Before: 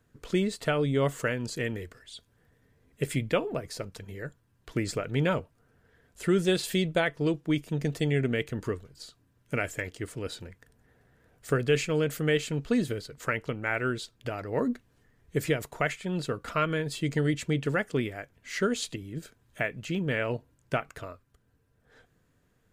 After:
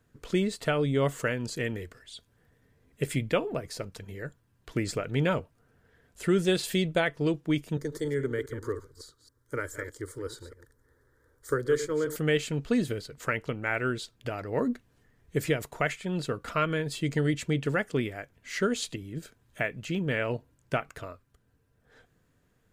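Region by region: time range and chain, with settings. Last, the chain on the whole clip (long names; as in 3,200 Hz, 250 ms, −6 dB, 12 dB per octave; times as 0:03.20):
0:07.77–0:12.16: delay that plays each chunk backwards 138 ms, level −11 dB + phaser with its sweep stopped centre 710 Hz, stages 6
whole clip: no processing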